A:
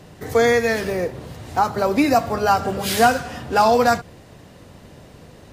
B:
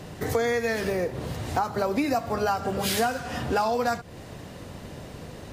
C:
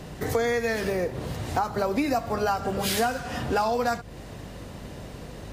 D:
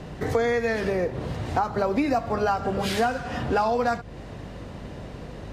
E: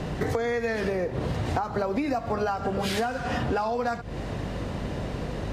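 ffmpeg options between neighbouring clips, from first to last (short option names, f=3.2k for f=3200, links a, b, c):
-af "acompressor=threshold=-28dB:ratio=4,volume=3.5dB"
-af "aeval=exprs='val(0)+0.00562*(sin(2*PI*50*n/s)+sin(2*PI*2*50*n/s)/2+sin(2*PI*3*50*n/s)/3+sin(2*PI*4*50*n/s)/4+sin(2*PI*5*50*n/s)/5)':c=same"
-af "aemphasis=mode=reproduction:type=50fm,volume=1.5dB"
-af "acompressor=threshold=-31dB:ratio=6,volume=6.5dB"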